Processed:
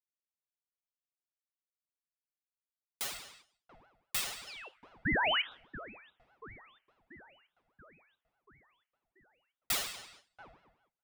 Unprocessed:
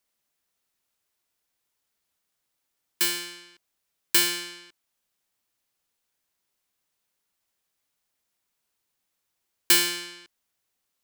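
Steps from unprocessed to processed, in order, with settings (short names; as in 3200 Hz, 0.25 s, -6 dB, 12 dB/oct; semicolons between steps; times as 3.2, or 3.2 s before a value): gate -45 dBFS, range -15 dB; flange 0.35 Hz, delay 9.3 ms, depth 9.9 ms, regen -48%; painted sound rise, 5.05–5.42, 720–2800 Hz -20 dBFS; dark delay 0.684 s, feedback 59%, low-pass 640 Hz, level -7.5 dB; painted sound fall, 4.47–4.69, 1500–4300 Hz -38 dBFS; Schroeder reverb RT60 0.51 s, combs from 26 ms, DRR 15 dB; ring modulator with a swept carrier 740 Hz, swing 60%, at 4.9 Hz; gain -6.5 dB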